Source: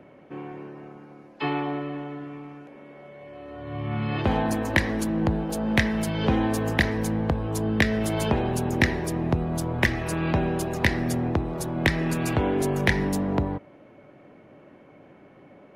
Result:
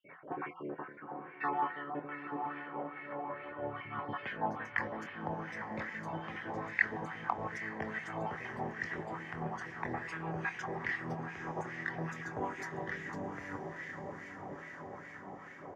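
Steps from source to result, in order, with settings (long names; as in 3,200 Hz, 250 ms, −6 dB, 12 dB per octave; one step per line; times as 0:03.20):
time-frequency cells dropped at random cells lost 35%
low-pass that shuts in the quiet parts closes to 2,000 Hz, open at −22.5 dBFS
reversed playback
downward compressor 5 to 1, threshold −34 dBFS, peak gain reduction 16.5 dB
reversed playback
rotating-speaker cabinet horn 6 Hz
double-tracking delay 24 ms −11.5 dB
speech leveller within 4 dB 0.5 s
thirty-one-band graphic EQ 100 Hz +10 dB, 160 Hz +7 dB, 630 Hz −5 dB, 2,500 Hz −5 dB, 4,000 Hz −8 dB, 6,300 Hz +4 dB, 10,000 Hz −10 dB
on a send: feedback delay with all-pass diffusion 942 ms, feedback 63%, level −6.5 dB
on the sum: LFO wah 2.4 Hz 750–2,100 Hz, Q 2.6
hum removal 170.5 Hz, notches 6
level +12.5 dB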